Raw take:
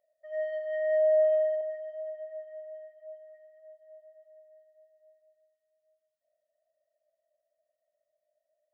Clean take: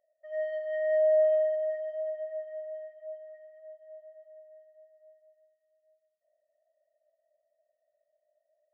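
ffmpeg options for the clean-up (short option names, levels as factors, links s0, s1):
-af "asetnsamples=n=441:p=0,asendcmd='1.61 volume volume 4dB',volume=1"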